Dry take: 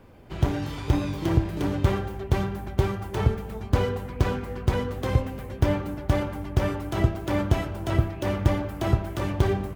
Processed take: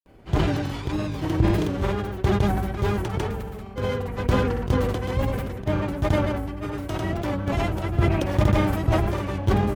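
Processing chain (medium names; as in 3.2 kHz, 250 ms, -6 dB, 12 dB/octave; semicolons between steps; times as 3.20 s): wow and flutter 70 cents; granulator 100 ms, grains 20 per s, spray 100 ms, pitch spread up and down by 0 st; decay stretcher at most 32 dB/s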